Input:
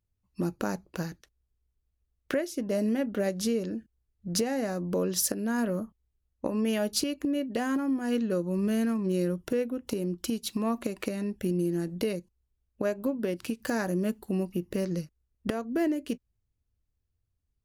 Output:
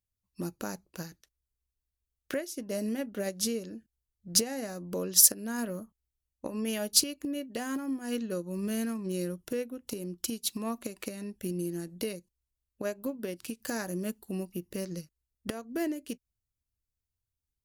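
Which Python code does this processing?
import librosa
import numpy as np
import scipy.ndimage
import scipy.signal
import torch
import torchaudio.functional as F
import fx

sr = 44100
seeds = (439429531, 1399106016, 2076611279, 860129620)

y = fx.high_shelf(x, sr, hz=3800.0, db=11.5)
y = fx.upward_expand(y, sr, threshold_db=-36.0, expansion=1.5)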